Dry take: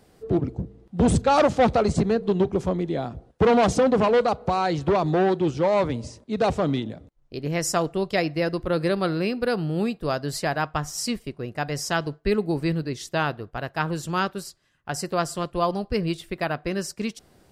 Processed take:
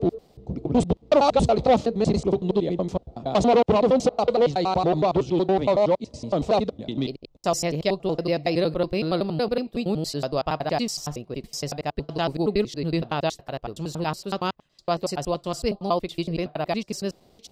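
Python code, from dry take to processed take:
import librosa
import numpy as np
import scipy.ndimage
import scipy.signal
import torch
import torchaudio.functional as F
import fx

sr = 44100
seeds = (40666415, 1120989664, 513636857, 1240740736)

y = fx.block_reorder(x, sr, ms=93.0, group=4)
y = fx.graphic_eq_15(y, sr, hz=(100, 630, 1600, 4000, 10000), db=(-5, 3, -10, 4, -8))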